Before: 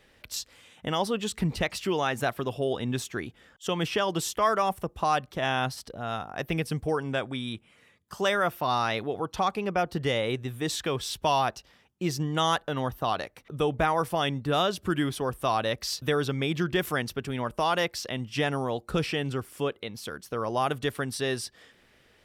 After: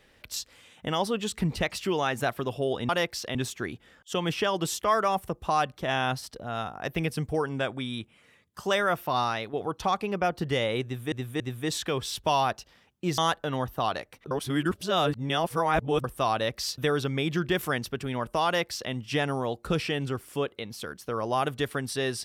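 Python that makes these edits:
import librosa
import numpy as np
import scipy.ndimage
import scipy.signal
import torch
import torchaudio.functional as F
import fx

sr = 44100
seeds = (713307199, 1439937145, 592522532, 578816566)

y = fx.edit(x, sr, fx.fade_out_to(start_s=8.74, length_s=0.33, floor_db=-8.0),
    fx.repeat(start_s=10.38, length_s=0.28, count=3),
    fx.cut(start_s=12.16, length_s=0.26),
    fx.reverse_span(start_s=13.55, length_s=1.73),
    fx.duplicate(start_s=17.7, length_s=0.46, to_s=2.89), tone=tone)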